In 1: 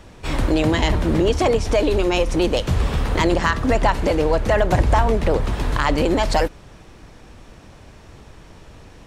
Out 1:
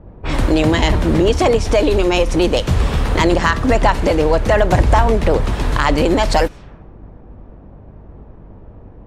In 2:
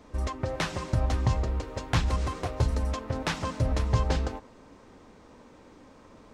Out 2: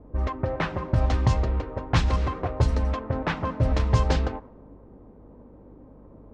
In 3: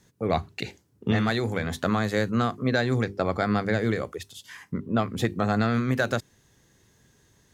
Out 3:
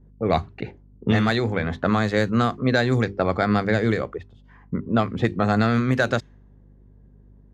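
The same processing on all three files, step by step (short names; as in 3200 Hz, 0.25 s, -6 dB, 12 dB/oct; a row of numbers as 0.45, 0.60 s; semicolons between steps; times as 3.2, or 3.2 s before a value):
hum 50 Hz, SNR 28 dB; low-pass opened by the level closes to 550 Hz, open at -18 dBFS; gain +4 dB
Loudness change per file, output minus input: +4.0, +4.0, +4.0 LU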